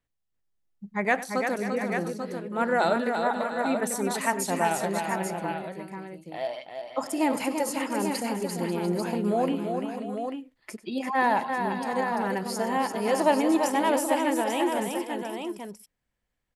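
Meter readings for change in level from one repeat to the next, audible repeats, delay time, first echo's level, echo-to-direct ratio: no regular repeats, 5, 96 ms, -16.5 dB, -2.5 dB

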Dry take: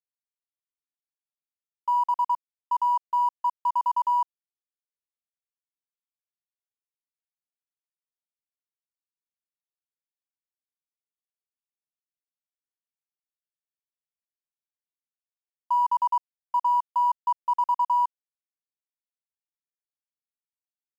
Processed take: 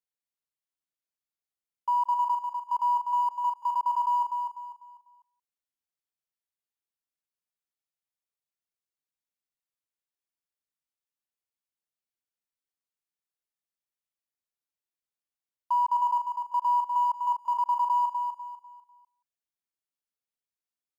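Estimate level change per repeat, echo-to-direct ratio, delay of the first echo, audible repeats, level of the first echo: no regular repeats, -5.5 dB, 178 ms, 5, -20.5 dB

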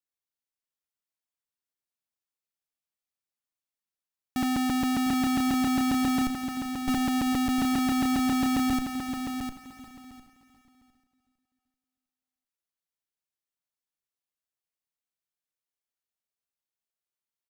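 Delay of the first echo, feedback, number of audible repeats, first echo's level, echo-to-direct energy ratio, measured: 386 ms, no regular repeats, 7, -16.5 dB, -6.0 dB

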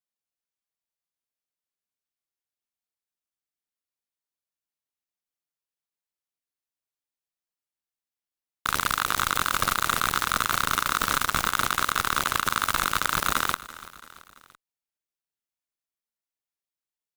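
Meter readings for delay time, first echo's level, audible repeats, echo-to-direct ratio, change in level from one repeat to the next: 336 ms, -18.0 dB, 3, -16.5 dB, -5.0 dB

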